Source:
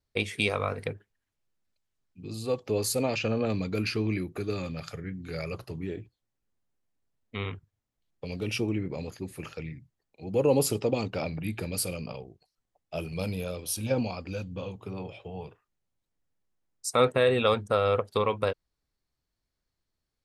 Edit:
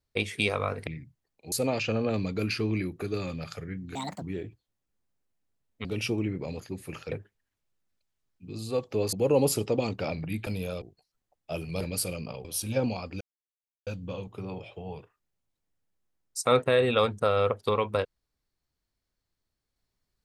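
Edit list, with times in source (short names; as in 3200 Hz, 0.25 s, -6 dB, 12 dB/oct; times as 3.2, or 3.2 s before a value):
0.87–2.88 swap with 9.62–10.27
5.31–5.75 speed 165%
7.38–8.35 cut
11.61–12.25 swap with 13.24–13.59
14.35 insert silence 0.66 s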